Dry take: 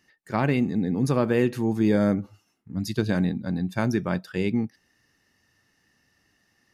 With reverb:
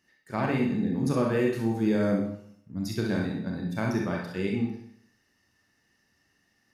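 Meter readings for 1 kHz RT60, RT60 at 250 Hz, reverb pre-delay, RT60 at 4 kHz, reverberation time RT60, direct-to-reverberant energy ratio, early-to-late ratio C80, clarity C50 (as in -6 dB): 0.65 s, 0.70 s, 29 ms, 0.65 s, 0.65 s, -1.0 dB, 7.0 dB, 2.0 dB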